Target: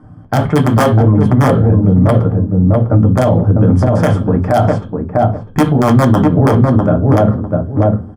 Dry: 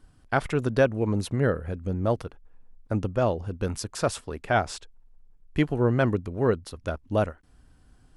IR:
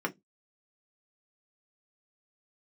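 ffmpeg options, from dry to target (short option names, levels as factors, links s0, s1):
-filter_complex "[0:a]lowpass=f=1200:p=1,asplit=2[s0][s1];[s1]acompressor=threshold=0.0316:ratio=12,volume=1[s2];[s0][s2]amix=inputs=2:normalize=0,aeval=exprs='(mod(3.98*val(0)+1,2)-1)/3.98':c=same,asplit=2[s3][s4];[s4]adelay=650,lowpass=f=850:p=1,volume=0.631,asplit=2[s5][s6];[s6]adelay=650,lowpass=f=850:p=1,volume=0.25,asplit=2[s7][s8];[s8]adelay=650,lowpass=f=850:p=1,volume=0.25[s9];[s3][s5][s7][s9]amix=inputs=4:normalize=0[s10];[1:a]atrim=start_sample=2205,asetrate=25578,aresample=44100[s11];[s10][s11]afir=irnorm=-1:irlink=0,alimiter=level_in=1.88:limit=0.891:release=50:level=0:latency=1,volume=0.891"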